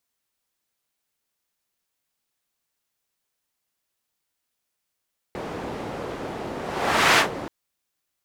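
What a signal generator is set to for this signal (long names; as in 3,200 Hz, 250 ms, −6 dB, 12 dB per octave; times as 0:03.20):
pass-by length 2.13 s, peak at 0:01.83, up 0.64 s, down 0.13 s, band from 470 Hz, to 1,600 Hz, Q 0.75, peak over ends 16 dB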